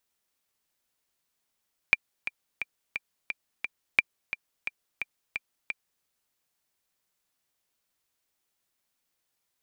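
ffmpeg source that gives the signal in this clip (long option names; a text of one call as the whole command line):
ffmpeg -f lavfi -i "aevalsrc='pow(10,(-5-12.5*gte(mod(t,6*60/175),60/175))/20)*sin(2*PI*2370*mod(t,60/175))*exp(-6.91*mod(t,60/175)/0.03)':duration=4.11:sample_rate=44100" out.wav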